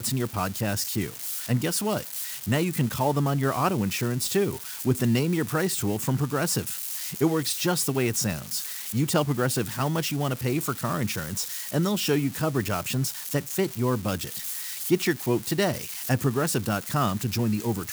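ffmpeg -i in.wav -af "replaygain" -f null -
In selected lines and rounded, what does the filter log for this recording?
track_gain = +7.7 dB
track_peak = 0.232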